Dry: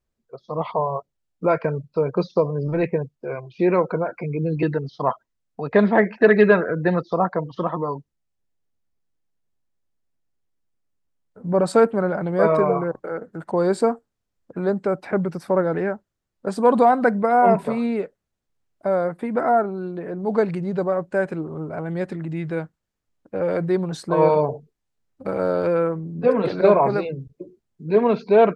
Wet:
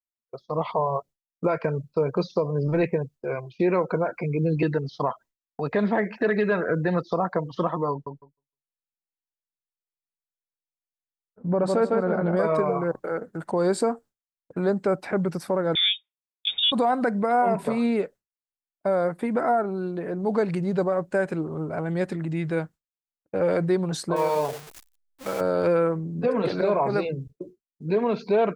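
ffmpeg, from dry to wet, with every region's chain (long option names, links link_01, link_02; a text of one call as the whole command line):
ffmpeg -i in.wav -filter_complex "[0:a]asettb=1/sr,asplit=3[link_01][link_02][link_03];[link_01]atrim=end=7.914[link_04];[link_02]atrim=start=7.91:end=12.37,asetpts=PTS-STARTPTS,afade=type=in:duration=0.004:curve=qsin,afade=type=out:start_time=4.456:duration=0.004:curve=qsin,aemphasis=mode=reproduction:type=75kf,asplit=2[link_05][link_06];[link_06]adelay=154,lowpass=frequency=4800:poles=1,volume=-5dB,asplit=2[link_07][link_08];[link_08]adelay=154,lowpass=frequency=4800:poles=1,volume=0.29,asplit=2[link_09][link_10];[link_10]adelay=154,lowpass=frequency=4800:poles=1,volume=0.29,asplit=2[link_11][link_12];[link_12]adelay=154,lowpass=frequency=4800:poles=1,volume=0.29[link_13];[link_05][link_07][link_09][link_11][link_13]amix=inputs=5:normalize=0,atrim=end_sample=196686[link_14];[link_03]atrim=start=12.366[link_15];[link_04][link_14]acrossfade=duration=0.004:curve1=hsin:curve2=qsin[link_16];[link_16][link_15]acrossfade=duration=0.004:curve1=qsin:curve2=hsin,asettb=1/sr,asplit=3[link_17][link_18][link_19];[link_17]atrim=end=15.754[link_20];[link_18]atrim=start=15.75:end=16.72,asetpts=PTS-STARTPTS,afade=type=in:duration=0.004:curve=qsin,afade=type=out:start_time=0.966:duration=0.004:curve=qsin,highpass=frequency=250:width=0.5412,highpass=frequency=250:width=1.3066,lowpass=frequency=3300:width_type=q:width=0.5098,lowpass=frequency=3300:width_type=q:width=0.6013,lowpass=frequency=3300:width_type=q:width=0.9,lowpass=frequency=3300:width_type=q:width=2.563,afreqshift=-3900[link_21];[link_19]atrim=start=16.716[link_22];[link_20][link_21]acrossfade=duration=0.004:curve1=hsin:curve2=qsin[link_23];[link_23][link_22]acrossfade=duration=0.004:curve1=qsin:curve2=hsin,asettb=1/sr,asplit=3[link_24][link_25][link_26];[link_24]atrim=end=24.164[link_27];[link_25]atrim=start=24.16:end=25.41,asetpts=PTS-STARTPTS,afade=type=in:duration=0.004:curve=qsin,afade=type=out:start_time=1.246:duration=0.004:curve=qsin,aeval=exprs='val(0)+0.5*0.0251*sgn(val(0))':channel_layout=same,lowshelf=frequency=450:gain=-11.5[link_28];[link_26]atrim=start=25.406[link_29];[link_27][link_28]acrossfade=duration=0.004:curve1=hsin:curve2=qsin[link_30];[link_30][link_29]acrossfade=duration=0.004:curve1=qsin:curve2=hsin,agate=range=-33dB:threshold=-38dB:ratio=3:detection=peak,highshelf=frequency=4600:gain=7.5,alimiter=limit=-14dB:level=0:latency=1:release=151" out.wav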